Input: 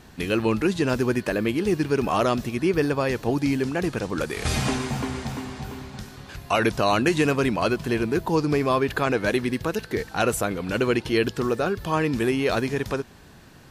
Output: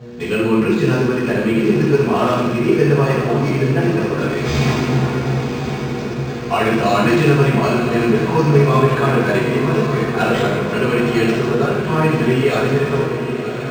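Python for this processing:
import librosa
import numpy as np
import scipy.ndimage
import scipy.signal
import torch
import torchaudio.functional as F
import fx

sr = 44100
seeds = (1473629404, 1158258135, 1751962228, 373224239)

y = fx.dmg_buzz(x, sr, base_hz=120.0, harmonics=5, level_db=-38.0, tilt_db=-4, odd_only=False)
y = scipy.signal.sosfilt(scipy.signal.butter(2, 90.0, 'highpass', fs=sr, output='sos'), y)
y = fx.echo_diffused(y, sr, ms=1039, feedback_pct=64, wet_db=-8.5)
y = fx.rev_fdn(y, sr, rt60_s=1.2, lf_ratio=1.2, hf_ratio=1.0, size_ms=42.0, drr_db=-10.0)
y = np.interp(np.arange(len(y)), np.arange(len(y))[::4], y[::4])
y = F.gain(torch.from_numpy(y), -4.0).numpy()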